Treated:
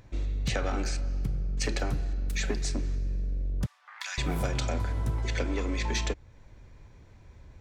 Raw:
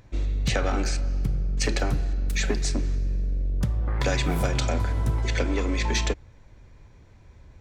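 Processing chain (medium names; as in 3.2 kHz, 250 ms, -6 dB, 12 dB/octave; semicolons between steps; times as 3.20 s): 3.66–4.18 s: Bessel high-pass 1.6 kHz, order 8; in parallel at -2.5 dB: compression, threshold -37 dBFS, peak gain reduction 17 dB; on the sum: trim -6 dB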